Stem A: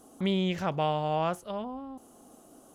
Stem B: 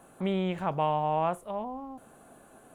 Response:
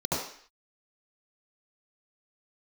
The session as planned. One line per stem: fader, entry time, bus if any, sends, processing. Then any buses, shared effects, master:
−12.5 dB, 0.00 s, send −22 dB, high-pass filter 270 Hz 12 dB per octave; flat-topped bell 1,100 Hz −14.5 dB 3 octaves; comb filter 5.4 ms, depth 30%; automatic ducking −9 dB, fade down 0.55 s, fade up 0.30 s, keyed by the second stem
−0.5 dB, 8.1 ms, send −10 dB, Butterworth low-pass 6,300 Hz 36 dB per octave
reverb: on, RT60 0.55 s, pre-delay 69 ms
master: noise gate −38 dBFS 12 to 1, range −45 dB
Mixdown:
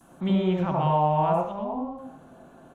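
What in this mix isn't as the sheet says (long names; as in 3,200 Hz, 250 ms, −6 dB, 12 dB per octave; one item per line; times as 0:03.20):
stem A −12.5 dB → −3.0 dB
master: missing noise gate −38 dBFS 12 to 1, range −45 dB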